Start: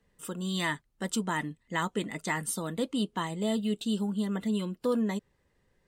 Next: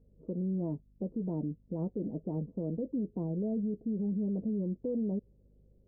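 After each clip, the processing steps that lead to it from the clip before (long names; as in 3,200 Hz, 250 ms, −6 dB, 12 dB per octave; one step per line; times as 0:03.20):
Butterworth low-pass 580 Hz 36 dB per octave
brickwall limiter −31 dBFS, peak gain reduction 11 dB
mains hum 50 Hz, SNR 30 dB
level +4 dB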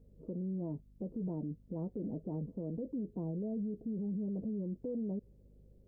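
brickwall limiter −34.5 dBFS, peak gain reduction 7.5 dB
level +2.5 dB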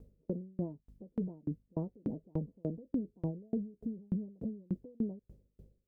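tremolo with a ramp in dB decaying 3.4 Hz, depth 37 dB
level +8.5 dB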